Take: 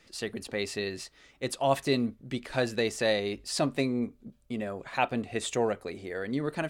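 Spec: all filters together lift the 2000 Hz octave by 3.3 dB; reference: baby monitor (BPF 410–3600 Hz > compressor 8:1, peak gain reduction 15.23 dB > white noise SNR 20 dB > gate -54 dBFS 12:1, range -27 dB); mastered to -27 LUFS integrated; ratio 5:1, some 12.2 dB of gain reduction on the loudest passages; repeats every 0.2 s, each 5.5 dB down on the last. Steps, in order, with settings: bell 2000 Hz +4.5 dB; compressor 5:1, threshold -34 dBFS; BPF 410–3600 Hz; feedback echo 0.2 s, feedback 53%, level -5.5 dB; compressor 8:1, threshold -46 dBFS; white noise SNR 20 dB; gate -54 dBFS 12:1, range -27 dB; gain +22.5 dB

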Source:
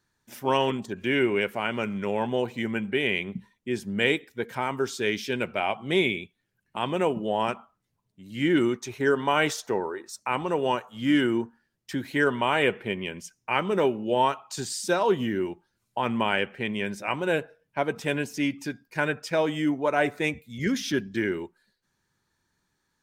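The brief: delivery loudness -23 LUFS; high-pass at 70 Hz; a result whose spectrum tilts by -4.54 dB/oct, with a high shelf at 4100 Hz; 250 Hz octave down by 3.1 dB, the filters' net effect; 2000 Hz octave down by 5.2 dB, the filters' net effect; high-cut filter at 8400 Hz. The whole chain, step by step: HPF 70 Hz; LPF 8400 Hz; bell 250 Hz -4 dB; bell 2000 Hz -7.5 dB; high shelf 4100 Hz +3.5 dB; gain +6.5 dB

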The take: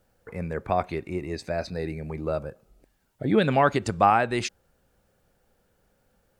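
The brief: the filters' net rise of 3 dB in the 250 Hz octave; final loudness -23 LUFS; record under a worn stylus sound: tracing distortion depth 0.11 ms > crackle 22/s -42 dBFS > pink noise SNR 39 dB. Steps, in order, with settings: bell 250 Hz +4 dB; tracing distortion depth 0.11 ms; crackle 22/s -42 dBFS; pink noise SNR 39 dB; gain +2 dB

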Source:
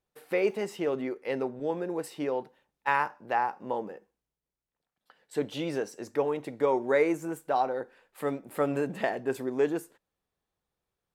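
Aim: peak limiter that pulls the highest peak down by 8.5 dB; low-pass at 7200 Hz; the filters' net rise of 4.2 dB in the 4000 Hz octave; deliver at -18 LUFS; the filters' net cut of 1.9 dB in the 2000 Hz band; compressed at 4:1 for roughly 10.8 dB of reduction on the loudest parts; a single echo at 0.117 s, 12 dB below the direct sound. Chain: LPF 7200 Hz; bell 2000 Hz -4 dB; bell 4000 Hz +7.5 dB; compressor 4:1, threshold -34 dBFS; limiter -28 dBFS; echo 0.117 s -12 dB; gain +21.5 dB

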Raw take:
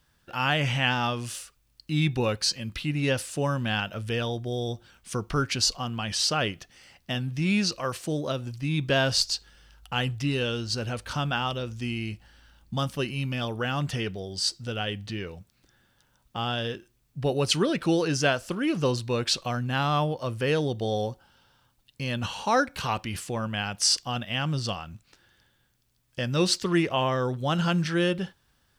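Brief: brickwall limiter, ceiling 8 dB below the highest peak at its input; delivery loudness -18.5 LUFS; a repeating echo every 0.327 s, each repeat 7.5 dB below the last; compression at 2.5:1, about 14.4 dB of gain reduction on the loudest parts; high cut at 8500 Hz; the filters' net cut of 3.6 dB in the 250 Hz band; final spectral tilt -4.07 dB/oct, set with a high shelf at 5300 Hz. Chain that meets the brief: LPF 8500 Hz; bell 250 Hz -5.5 dB; high shelf 5300 Hz +7.5 dB; compressor 2.5:1, threshold -39 dBFS; limiter -28.5 dBFS; feedback echo 0.327 s, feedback 42%, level -7.5 dB; gain +20 dB

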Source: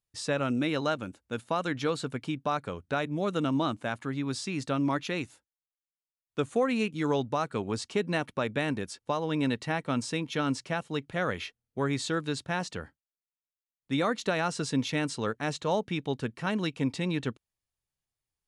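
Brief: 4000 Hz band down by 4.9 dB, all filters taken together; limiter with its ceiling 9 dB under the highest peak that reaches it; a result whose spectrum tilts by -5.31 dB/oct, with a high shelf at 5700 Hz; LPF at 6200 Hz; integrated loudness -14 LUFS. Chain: LPF 6200 Hz; bell 4000 Hz -3.5 dB; high shelf 5700 Hz -5.5 dB; gain +22.5 dB; limiter -3 dBFS

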